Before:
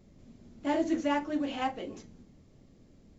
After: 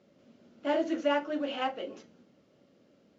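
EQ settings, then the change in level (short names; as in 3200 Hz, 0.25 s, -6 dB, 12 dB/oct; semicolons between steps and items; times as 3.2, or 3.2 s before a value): speaker cabinet 230–6100 Hz, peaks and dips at 560 Hz +8 dB, 1400 Hz +8 dB, 2900 Hz +6 dB; -2.0 dB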